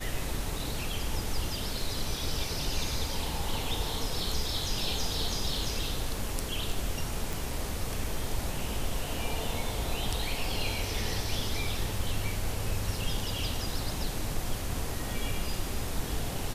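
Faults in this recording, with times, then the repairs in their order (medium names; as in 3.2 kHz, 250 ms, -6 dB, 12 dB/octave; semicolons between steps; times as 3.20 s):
7.33 s: pop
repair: de-click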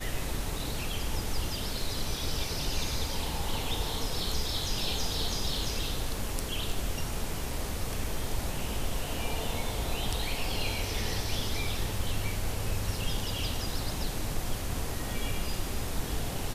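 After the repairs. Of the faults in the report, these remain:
nothing left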